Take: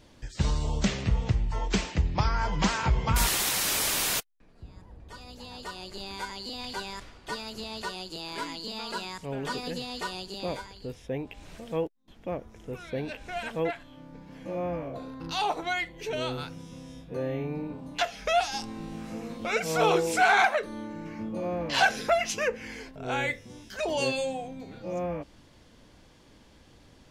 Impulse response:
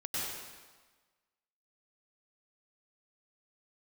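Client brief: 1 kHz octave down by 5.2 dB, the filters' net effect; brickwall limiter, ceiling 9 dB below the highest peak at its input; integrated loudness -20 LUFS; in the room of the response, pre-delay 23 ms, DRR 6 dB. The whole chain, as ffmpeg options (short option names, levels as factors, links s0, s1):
-filter_complex "[0:a]equalizer=f=1000:t=o:g=-8,alimiter=limit=0.0841:level=0:latency=1,asplit=2[s0][s1];[1:a]atrim=start_sample=2205,adelay=23[s2];[s1][s2]afir=irnorm=-1:irlink=0,volume=0.299[s3];[s0][s3]amix=inputs=2:normalize=0,volume=4.47"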